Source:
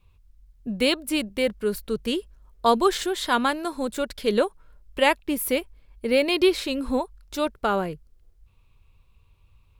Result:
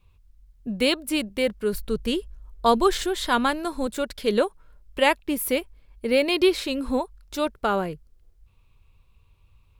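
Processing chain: 1.73–3.87 s: bass shelf 82 Hz +11 dB

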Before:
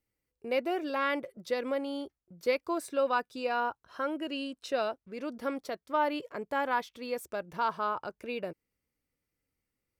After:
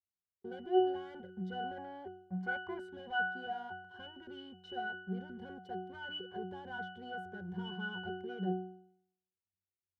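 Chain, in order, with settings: waveshaping leveller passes 5; in parallel at +3 dB: peak limiter -26 dBFS, peak gain reduction 9 dB; on the sum: time-frequency box 1.77–2.80 s, 550–2500 Hz +10 dB; pitch-class resonator F#, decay 0.66 s

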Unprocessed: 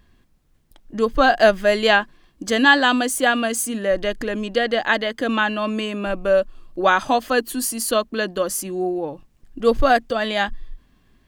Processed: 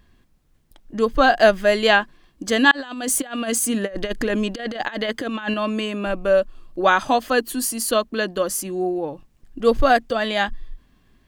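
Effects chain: 2.71–5.54 s: compressor with a negative ratio -24 dBFS, ratio -0.5

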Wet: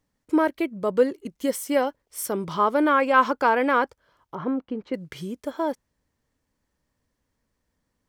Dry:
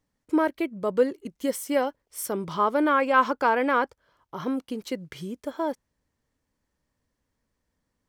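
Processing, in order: 4.35–4.94 s: low-pass 1.7 kHz 12 dB/octave; trim +2 dB

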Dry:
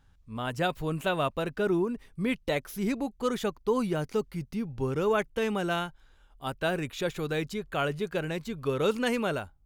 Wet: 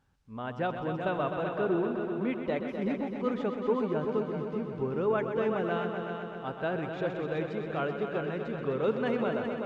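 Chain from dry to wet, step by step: high-pass 210 Hz 6 dB/octave; treble shelf 4.5 kHz -7.5 dB; added noise violet -60 dBFS; tape spacing loss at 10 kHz 29 dB; multi-head delay 127 ms, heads all three, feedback 61%, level -10 dB

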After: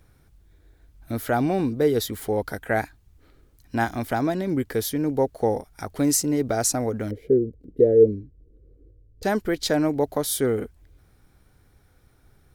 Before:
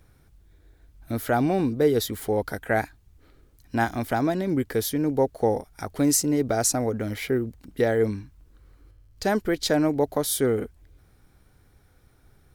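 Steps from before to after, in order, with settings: 7.11–9.23 s: FFT filter 240 Hz 0 dB, 460 Hz +9 dB, 910 Hz -25 dB

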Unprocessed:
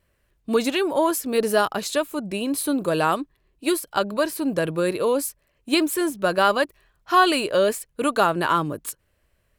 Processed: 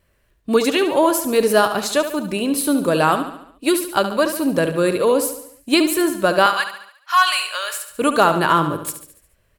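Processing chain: hard clipper -7 dBFS, distortion -32 dB; 6.46–7.91 s: high-pass 1 kHz 24 dB/octave; feedback delay 71 ms, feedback 52%, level -10 dB; trim +4.5 dB

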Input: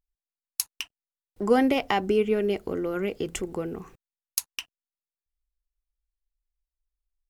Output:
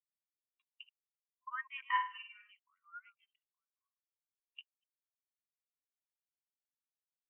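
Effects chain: chunks repeated in reverse 121 ms, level -6.5 dB; 3.31–4.50 s: compression 6:1, threshold -38 dBFS, peak gain reduction 16.5 dB; brick-wall FIR band-pass 940–3900 Hz; 1.83–2.52 s: flutter echo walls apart 8.9 m, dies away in 0.95 s; spectral contrast expander 2.5:1; trim -8.5 dB

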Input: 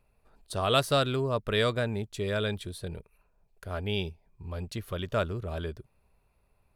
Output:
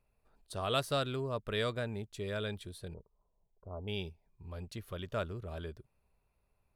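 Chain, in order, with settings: 2.94–3.88 s: elliptic low-pass 1.1 kHz, stop band 40 dB; trim -7.5 dB

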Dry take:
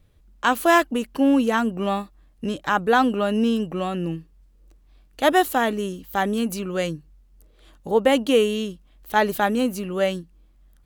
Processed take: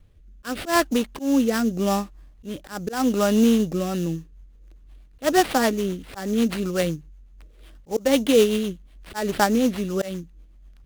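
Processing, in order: bass shelf 100 Hz +5.5 dB; slow attack 189 ms; sample-rate reducer 6.5 kHz, jitter 20%; rotary cabinet horn 0.8 Hz, later 8 Hz, at 3.61 s; trim +3 dB

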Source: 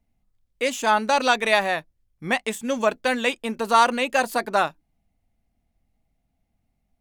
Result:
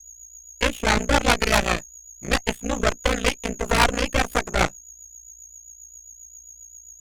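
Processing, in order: high-order bell 5.6 kHz -12.5 dB 1.2 oct; whistle 6.7 kHz -38 dBFS; ring modulator 29 Hz; Chebyshev shaper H 5 -11 dB, 7 -17 dB, 8 -6 dB, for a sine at -6 dBFS; rotary cabinet horn 7.5 Hz; trim -1.5 dB

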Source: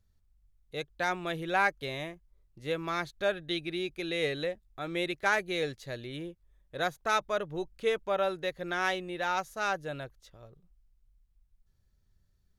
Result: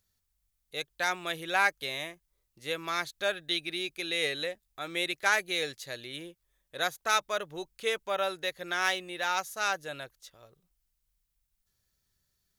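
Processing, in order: tilt EQ +3 dB/octave

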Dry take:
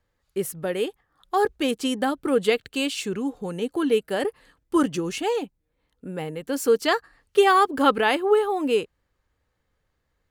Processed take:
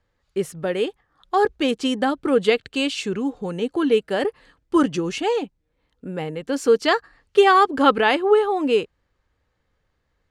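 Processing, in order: low-pass 6.5 kHz 12 dB/octave; trim +3 dB

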